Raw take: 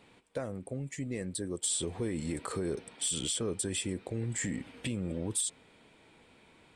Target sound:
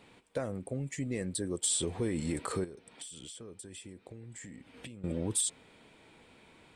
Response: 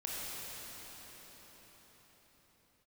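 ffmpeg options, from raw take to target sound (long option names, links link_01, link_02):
-filter_complex "[0:a]asettb=1/sr,asplit=3[link_01][link_02][link_03];[link_01]atrim=end=2.644[link_04];[link_02]atrim=start=2.64:end=5.04,asetpts=PTS-STARTPTS,afade=type=in:duration=0.004:curve=qsin,afade=type=out:start_time=2.396:duration=0.004:curve=qsin,acompressor=threshold=-46dB:ratio=10[link_05];[link_03]atrim=start=5.036[link_06];[link_04][link_05]acrossfade=duration=0.004:curve1=hsin:curve2=qsin[link_07];[link_07][link_06]acrossfade=duration=0.004:curve1=qsin:curve2=hsin,volume=1.5dB"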